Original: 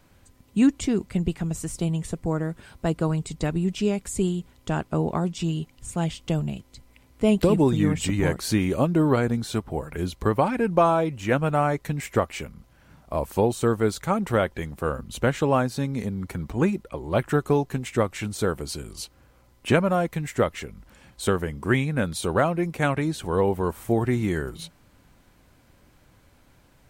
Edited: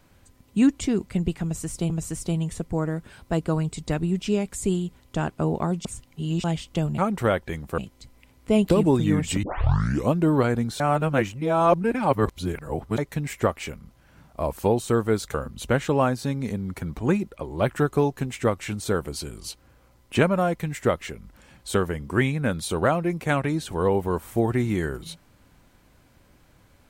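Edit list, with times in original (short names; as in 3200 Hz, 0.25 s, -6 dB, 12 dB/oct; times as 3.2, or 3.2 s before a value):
1.43–1.9 loop, 2 plays
5.38–5.97 reverse
8.16 tape start 0.68 s
9.53–11.71 reverse
14.07–14.87 move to 6.51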